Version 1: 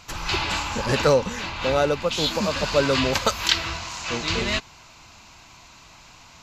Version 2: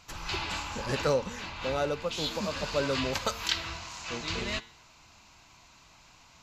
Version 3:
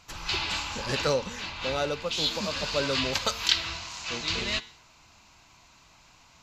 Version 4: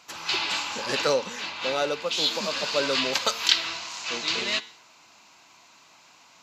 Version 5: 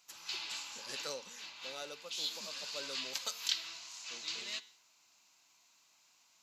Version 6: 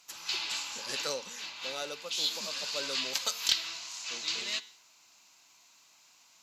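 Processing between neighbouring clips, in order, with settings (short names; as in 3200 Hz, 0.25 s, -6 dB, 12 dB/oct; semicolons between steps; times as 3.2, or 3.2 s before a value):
de-hum 113.6 Hz, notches 38; gain -8.5 dB
dynamic EQ 4000 Hz, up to +7 dB, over -48 dBFS, Q 0.72
HPF 260 Hz 12 dB/oct; gain +3 dB
pre-emphasis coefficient 0.8; gain -7.5 dB
one-sided clip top -22.5 dBFS; gain +7 dB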